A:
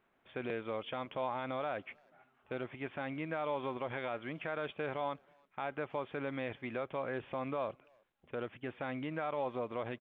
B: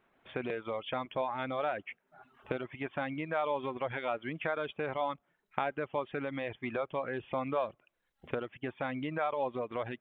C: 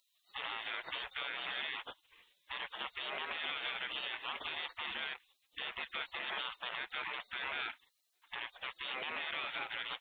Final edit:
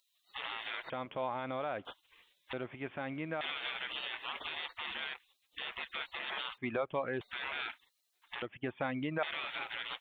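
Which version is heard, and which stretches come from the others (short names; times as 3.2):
C
0.9–1.85 from A
2.53–3.41 from A
6.58–7.21 from B
8.42–9.23 from B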